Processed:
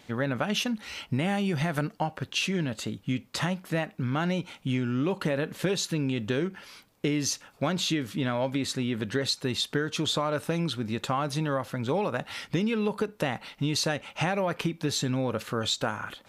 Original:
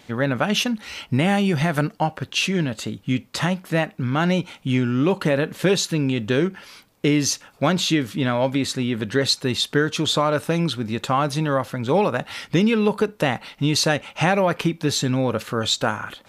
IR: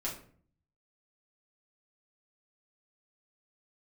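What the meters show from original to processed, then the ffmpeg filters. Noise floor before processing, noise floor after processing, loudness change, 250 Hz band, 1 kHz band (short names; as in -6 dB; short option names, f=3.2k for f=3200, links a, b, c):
-54 dBFS, -58 dBFS, -7.5 dB, -7.5 dB, -8.0 dB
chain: -af "acompressor=threshold=-20dB:ratio=3,volume=-4.5dB"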